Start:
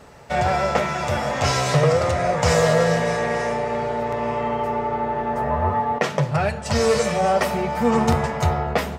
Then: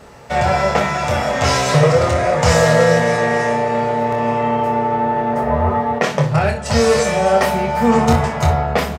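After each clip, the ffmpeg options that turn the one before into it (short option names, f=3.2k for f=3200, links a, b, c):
-af "aecho=1:1:26|60:0.531|0.282,volume=3.5dB"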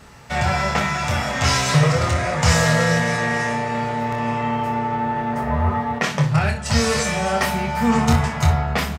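-af "equalizer=f=520:w=0.96:g=-10.5"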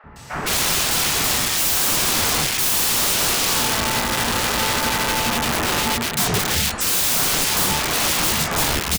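-filter_complex "[0:a]highshelf=f=3.3k:g=8,aeval=exprs='(mod(7.94*val(0)+1,2)-1)/7.94':c=same,acrossover=split=570|1800[a][b][c];[a]adelay=40[d];[c]adelay=160[e];[d][b][e]amix=inputs=3:normalize=0,volume=4dB"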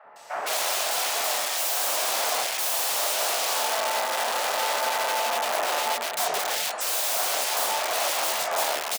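-af "highpass=f=640:t=q:w=3.4,volume=-7.5dB"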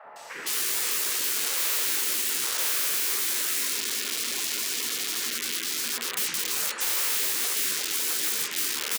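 -af "afftfilt=real='re*lt(hypot(re,im),0.0501)':imag='im*lt(hypot(re,im),0.0501)':win_size=1024:overlap=0.75,volume=3.5dB"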